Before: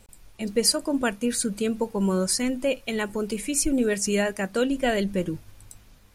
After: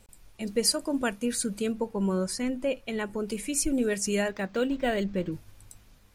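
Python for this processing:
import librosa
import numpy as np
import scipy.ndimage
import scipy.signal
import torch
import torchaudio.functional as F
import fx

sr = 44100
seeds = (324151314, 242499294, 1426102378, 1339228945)

y = fx.high_shelf(x, sr, hz=3600.0, db=-8.0, at=(1.72, 3.28))
y = fx.resample_linear(y, sr, factor=4, at=(4.28, 5.32))
y = F.gain(torch.from_numpy(y), -3.5).numpy()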